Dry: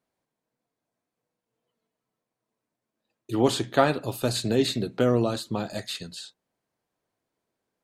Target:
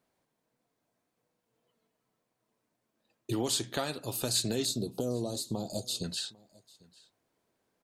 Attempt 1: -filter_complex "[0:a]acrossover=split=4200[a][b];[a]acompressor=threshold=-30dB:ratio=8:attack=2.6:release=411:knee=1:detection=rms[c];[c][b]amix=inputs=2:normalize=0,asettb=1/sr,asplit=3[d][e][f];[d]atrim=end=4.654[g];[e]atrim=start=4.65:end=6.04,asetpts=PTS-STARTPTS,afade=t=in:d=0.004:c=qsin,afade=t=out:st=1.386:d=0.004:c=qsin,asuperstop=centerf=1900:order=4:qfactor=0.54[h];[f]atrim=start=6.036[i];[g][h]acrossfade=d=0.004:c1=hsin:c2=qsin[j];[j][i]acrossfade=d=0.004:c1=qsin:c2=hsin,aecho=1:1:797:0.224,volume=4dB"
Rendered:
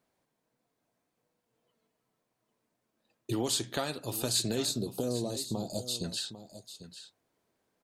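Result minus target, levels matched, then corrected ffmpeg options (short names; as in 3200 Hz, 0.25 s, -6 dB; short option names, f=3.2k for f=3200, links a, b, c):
echo-to-direct +11.5 dB
-filter_complex "[0:a]acrossover=split=4200[a][b];[a]acompressor=threshold=-30dB:ratio=8:attack=2.6:release=411:knee=1:detection=rms[c];[c][b]amix=inputs=2:normalize=0,asettb=1/sr,asplit=3[d][e][f];[d]atrim=end=4.654[g];[e]atrim=start=4.65:end=6.04,asetpts=PTS-STARTPTS,afade=t=in:d=0.004:c=qsin,afade=t=out:st=1.386:d=0.004:c=qsin,asuperstop=centerf=1900:order=4:qfactor=0.54[h];[f]atrim=start=6.036[i];[g][h]acrossfade=d=0.004:c1=hsin:c2=qsin[j];[j][i]acrossfade=d=0.004:c1=qsin:c2=hsin,aecho=1:1:797:0.0596,volume=4dB"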